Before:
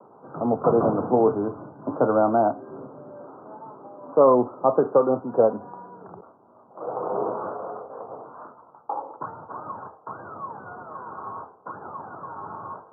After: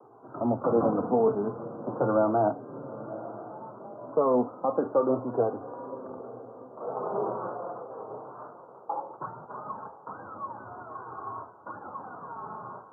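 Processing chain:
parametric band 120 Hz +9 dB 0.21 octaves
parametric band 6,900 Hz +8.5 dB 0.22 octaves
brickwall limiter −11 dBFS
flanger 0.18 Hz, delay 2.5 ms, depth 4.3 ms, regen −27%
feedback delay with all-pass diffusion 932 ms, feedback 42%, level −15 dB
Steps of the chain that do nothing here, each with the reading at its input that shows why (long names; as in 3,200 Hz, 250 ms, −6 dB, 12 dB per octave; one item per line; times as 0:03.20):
parametric band 6,900 Hz: nothing at its input above 1,400 Hz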